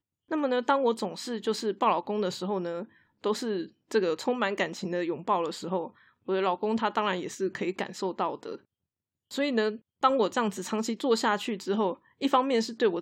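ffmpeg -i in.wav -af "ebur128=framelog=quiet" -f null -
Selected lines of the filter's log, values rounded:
Integrated loudness:
  I:         -29.1 LUFS
  Threshold: -39.3 LUFS
Loudness range:
  LRA:         3.4 LU
  Threshold: -49.9 LUFS
  LRA low:   -31.3 LUFS
  LRA high:  -27.8 LUFS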